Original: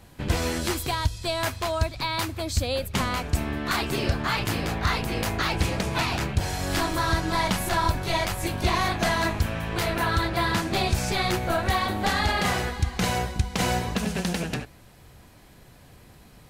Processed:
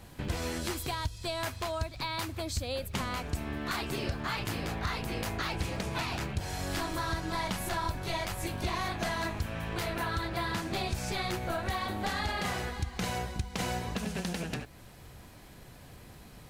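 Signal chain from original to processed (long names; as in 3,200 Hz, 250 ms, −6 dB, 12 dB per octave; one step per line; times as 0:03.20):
downward compressor 2 to 1, threshold −37 dBFS, peak gain reduction 11 dB
surface crackle 140 per second −51 dBFS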